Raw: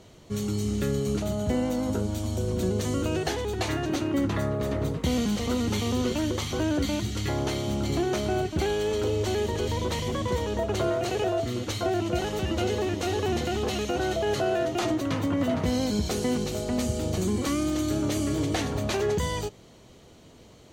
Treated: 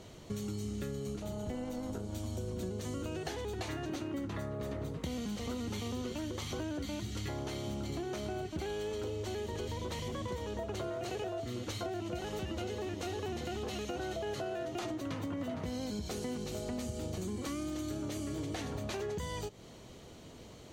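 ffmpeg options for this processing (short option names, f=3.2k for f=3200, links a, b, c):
-filter_complex "[0:a]asplit=3[a][b][c];[a]afade=t=out:st=1.14:d=0.02[d];[b]tremolo=f=240:d=0.519,afade=t=in:st=1.14:d=0.02,afade=t=out:st=2.13:d=0.02[e];[c]afade=t=in:st=2.13:d=0.02[f];[d][e][f]amix=inputs=3:normalize=0,acompressor=threshold=-36dB:ratio=6"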